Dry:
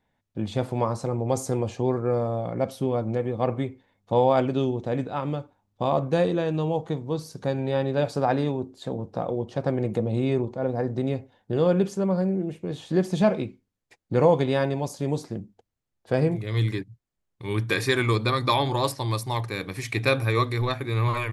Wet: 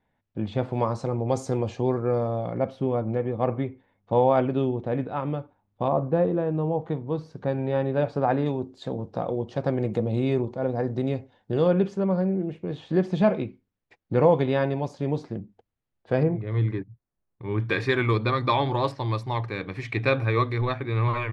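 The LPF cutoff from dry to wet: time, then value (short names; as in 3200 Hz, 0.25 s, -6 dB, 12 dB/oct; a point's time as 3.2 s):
3000 Hz
from 0.73 s 5300 Hz
from 2.57 s 2500 Hz
from 5.88 s 1200 Hz
from 6.82 s 2300 Hz
from 8.46 s 5800 Hz
from 11.68 s 3200 Hz
from 16.23 s 1500 Hz
from 17.6 s 2900 Hz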